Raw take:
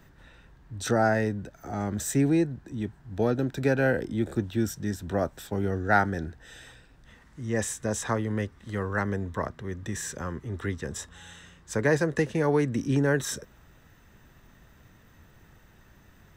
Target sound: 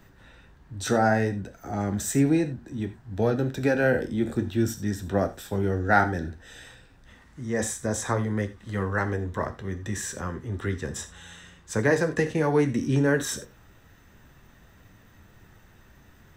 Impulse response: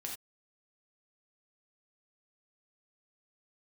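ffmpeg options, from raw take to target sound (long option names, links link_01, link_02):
-filter_complex "[0:a]asplit=2[link_01][link_02];[1:a]atrim=start_sample=2205[link_03];[link_02][link_03]afir=irnorm=-1:irlink=0,volume=-4.5dB[link_04];[link_01][link_04]amix=inputs=2:normalize=0,flanger=delay=9.6:depth=4:regen=-54:speed=0.59:shape=triangular,asettb=1/sr,asplit=3[link_05][link_06][link_07];[link_05]atrim=end=7.424[link_08];[link_06]atrim=start=7.42:end=8.56,asetpts=PTS-STARTPTS,afade=type=in:duration=0.004:curve=qsin,afade=type=out:start_time=1.136:duration=0.004:curve=qsin,equalizer=frequency=2800:width=5.7:gain=-8.5[link_09];[link_07]atrim=start=8.556[link_10];[link_08][link_09]acrossfade=duration=0.004:curve1=hsin:curve2=qsin[link_11];[link_11][link_10]acrossfade=duration=0.004:curve1=qsin:curve2=hsin,volume=3dB"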